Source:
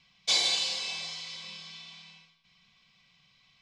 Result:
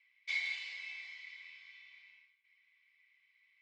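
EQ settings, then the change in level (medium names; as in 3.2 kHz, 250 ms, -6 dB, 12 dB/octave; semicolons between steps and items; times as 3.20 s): band-pass filter 2.1 kHz, Q 18; +8.0 dB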